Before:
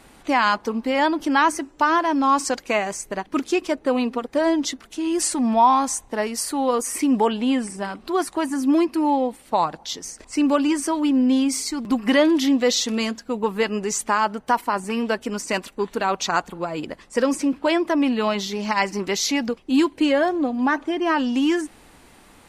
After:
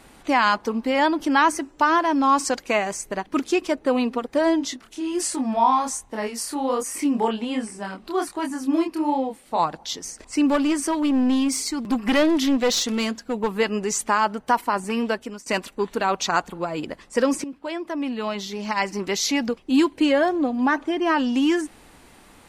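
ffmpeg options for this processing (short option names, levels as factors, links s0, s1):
-filter_complex "[0:a]asplit=3[s0][s1][s2];[s0]afade=t=out:st=4.58:d=0.02[s3];[s1]flanger=delay=22.5:depth=5:speed=1.3,afade=t=in:st=4.58:d=0.02,afade=t=out:st=9.58:d=0.02[s4];[s2]afade=t=in:st=9.58:d=0.02[s5];[s3][s4][s5]amix=inputs=3:normalize=0,asettb=1/sr,asplit=3[s6][s7][s8];[s6]atrim=end=10.494[s9];[s7]atrim=start=10.49:end=13.53,asetpts=PTS-STARTPTS,afade=t=in:d=0.004:c=qsin,afade=t=out:st=3.036:d=0.004:c=qsin,aeval=exprs='clip(val(0),-1,0.106)':c=same[s10];[s8]atrim=start=13.526[s11];[s9][s10]acrossfade=d=0.004:c1=hsin:c2=qsin[s12];[s12][s11]acrossfade=d=0.004:c1=qsin:c2=hsin,asplit=3[s13][s14][s15];[s13]atrim=end=15.46,asetpts=PTS-STARTPTS,afade=t=out:st=15.05:d=0.41:silence=0.11885[s16];[s14]atrim=start=15.46:end=17.44,asetpts=PTS-STARTPTS,afade=t=in:d=0.004:c=hsin:silence=0.11885,afade=t=out:st=1.976:d=0.004:c=hsin:silence=0.199526[s17];[s15]atrim=start=17.44,asetpts=PTS-STARTPTS,afade=t=in:d=1.98:silence=0.199526[s18];[s16][s17][s18]concat=n=3:v=0:a=1"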